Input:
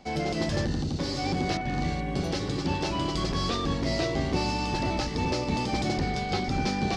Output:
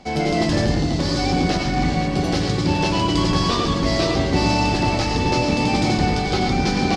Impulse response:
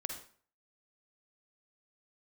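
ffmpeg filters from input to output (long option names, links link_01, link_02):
-filter_complex "[0:a]aecho=1:1:510:0.335[link_01];[1:a]atrim=start_sample=2205,atrim=end_sample=3528,asetrate=24255,aresample=44100[link_02];[link_01][link_02]afir=irnorm=-1:irlink=0,volume=5.5dB"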